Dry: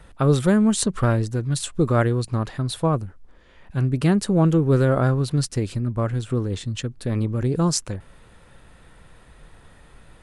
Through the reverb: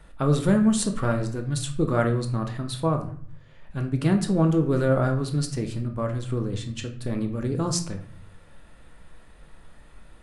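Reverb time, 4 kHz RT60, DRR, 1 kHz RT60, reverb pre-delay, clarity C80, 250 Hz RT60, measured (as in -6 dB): 0.55 s, 0.40 s, 4.0 dB, 0.50 s, 3 ms, 14.0 dB, 0.70 s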